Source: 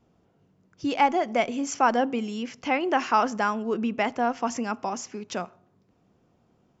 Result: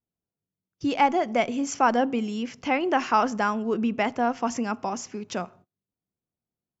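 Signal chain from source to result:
noise gate −52 dBFS, range −30 dB
low-shelf EQ 170 Hz +6 dB

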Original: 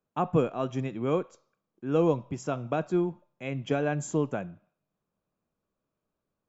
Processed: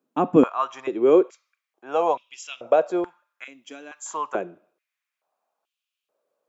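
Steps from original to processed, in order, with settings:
0:03.44–0:04.06: first difference
high-pass on a step sequencer 2.3 Hz 270–2,900 Hz
level +4 dB

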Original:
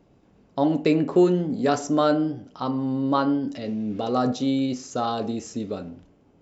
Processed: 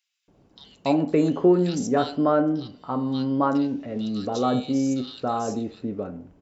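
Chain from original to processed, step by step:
multiband delay without the direct sound highs, lows 280 ms, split 2,300 Hz

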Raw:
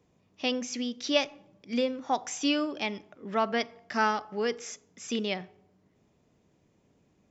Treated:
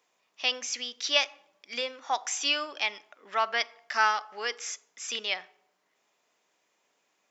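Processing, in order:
high-pass filter 1,000 Hz 12 dB per octave
level +5 dB

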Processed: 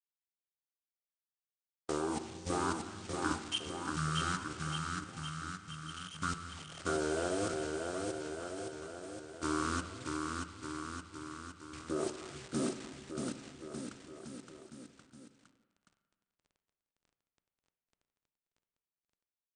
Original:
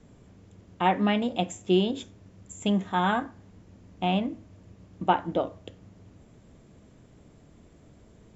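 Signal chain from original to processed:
hold until the input has moved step −39 dBFS
noise gate −45 dBFS, range −32 dB
high-pass filter 850 Hz 6 dB per octave
high-shelf EQ 3,800 Hz +11 dB
output level in coarse steps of 16 dB
bouncing-ball delay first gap 270 ms, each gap 0.9×, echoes 5
convolution reverb, pre-delay 3 ms, DRR 9.5 dB
wrong playback speed 78 rpm record played at 33 rpm
level −2.5 dB

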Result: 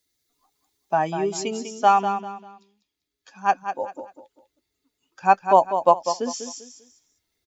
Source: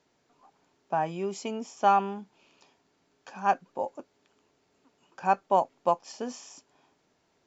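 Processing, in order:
spectral dynamics exaggerated over time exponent 1.5
bass and treble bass −5 dB, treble +13 dB, from 0:01.10 treble +5 dB
speech leveller within 5 dB 2 s
repeating echo 197 ms, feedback 30%, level −9 dB
level +8 dB

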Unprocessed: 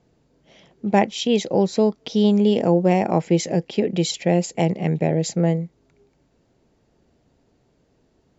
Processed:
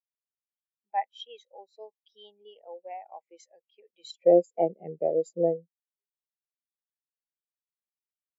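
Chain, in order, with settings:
high-pass filter 1,100 Hz 12 dB per octave, from 0:04.04 350 Hz
every bin expanded away from the loudest bin 2.5 to 1

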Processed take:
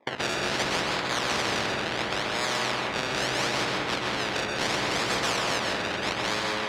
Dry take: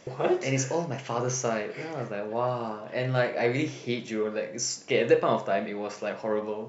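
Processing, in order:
downward expander −37 dBFS
tilt shelving filter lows −8.5 dB, about 840 Hz
in parallel at −3 dB: dead-zone distortion −37.5 dBFS
on the sum: sample-and-hold swept by an LFO 29×, swing 100% 0.74 Hz
soft clipping −19 dBFS, distortion −10 dB
band-pass filter 290–2,200 Hz
convolution reverb RT60 1.0 s, pre-delay 123 ms, DRR −0.5 dB
every bin compressed towards the loudest bin 4 to 1

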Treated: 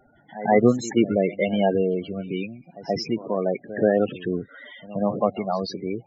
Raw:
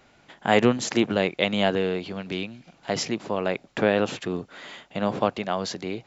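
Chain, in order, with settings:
spectral peaks only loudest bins 16
backwards echo 129 ms −16.5 dB
level +3 dB

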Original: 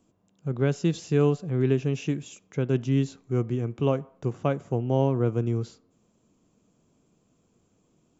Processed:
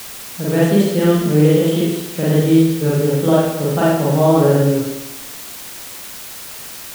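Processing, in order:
spring reverb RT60 1.1 s, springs 47/58 ms, chirp 60 ms, DRR −7.5 dB
speed change +18%
bit-depth reduction 6 bits, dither triangular
level +3.5 dB

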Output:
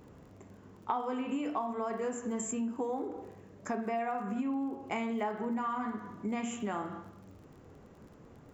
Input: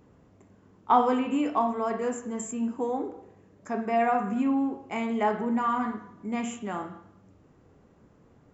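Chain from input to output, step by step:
mains-hum notches 60/120/180/240/300 Hz
downward compressor 6 to 1, threshold −36 dBFS, peak gain reduction 19 dB
surface crackle 34 per second −55 dBFS
level +4 dB

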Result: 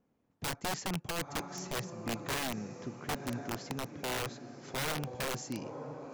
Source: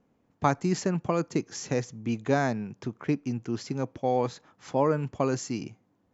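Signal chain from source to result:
feedback delay with all-pass diffusion 986 ms, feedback 52%, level −11 dB
wrap-around overflow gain 21.5 dB
level −7 dB

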